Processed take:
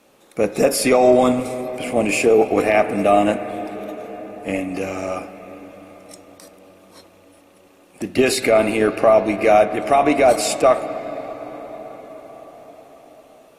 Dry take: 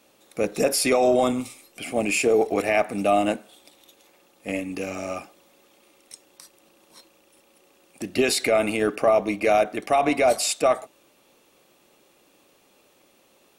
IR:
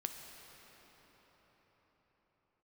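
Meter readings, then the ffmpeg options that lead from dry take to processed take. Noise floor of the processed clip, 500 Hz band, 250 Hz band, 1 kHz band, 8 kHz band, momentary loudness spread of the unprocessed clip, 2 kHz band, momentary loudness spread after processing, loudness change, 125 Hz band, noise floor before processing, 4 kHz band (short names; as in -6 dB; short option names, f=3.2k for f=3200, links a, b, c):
-51 dBFS, +6.0 dB, +6.0 dB, +6.0 dB, +1.5 dB, 13 LU, +4.0 dB, 18 LU, +5.0 dB, +6.5 dB, -60 dBFS, +1.5 dB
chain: -filter_complex "[0:a]asplit=2[a][b];[1:a]atrim=start_sample=2205,asetrate=34839,aresample=44100,lowpass=2.7k[c];[b][c]afir=irnorm=-1:irlink=0,volume=-3dB[d];[a][d]amix=inputs=2:normalize=0,volume=1.5dB" -ar 32000 -c:a aac -b:a 48k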